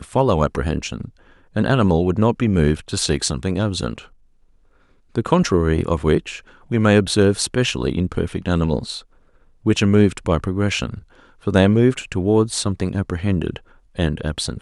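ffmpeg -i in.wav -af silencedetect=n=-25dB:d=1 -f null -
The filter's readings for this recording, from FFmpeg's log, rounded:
silence_start: 3.98
silence_end: 5.16 | silence_duration: 1.17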